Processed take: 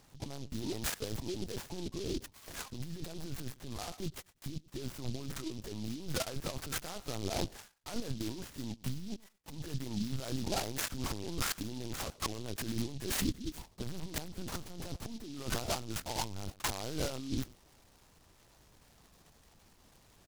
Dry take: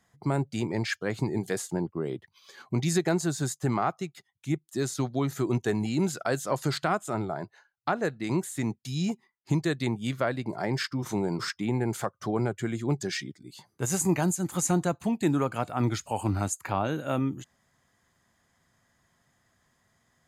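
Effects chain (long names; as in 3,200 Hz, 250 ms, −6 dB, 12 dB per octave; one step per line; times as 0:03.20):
low-pass filter 3,000 Hz 6 dB per octave
compressor whose output falls as the input rises −38 dBFS, ratio −1
on a send: repeating echo 106 ms, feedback 16%, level −22 dB
on the sum: linear-prediction vocoder at 8 kHz pitch kept
short delay modulated by noise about 4,200 Hz, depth 0.14 ms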